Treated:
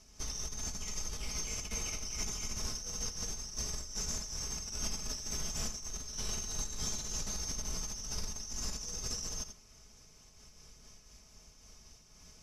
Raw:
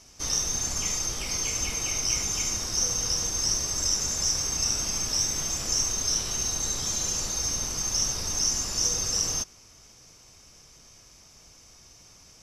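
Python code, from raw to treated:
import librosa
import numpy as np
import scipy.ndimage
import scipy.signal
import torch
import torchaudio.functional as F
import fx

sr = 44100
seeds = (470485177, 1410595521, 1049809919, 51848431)

y = fx.low_shelf(x, sr, hz=140.0, db=9.0)
y = fx.over_compress(y, sr, threshold_db=-28.0, ratio=-0.5)
y = y + 0.47 * np.pad(y, (int(4.7 * sr / 1000.0), 0))[:len(y)]
y = y + 10.0 ** (-10.5 / 20.0) * np.pad(y, (int(86 * sr / 1000.0), 0))[:len(y)]
y = fx.am_noise(y, sr, seeds[0], hz=5.7, depth_pct=60)
y = y * 10.0 ** (-7.5 / 20.0)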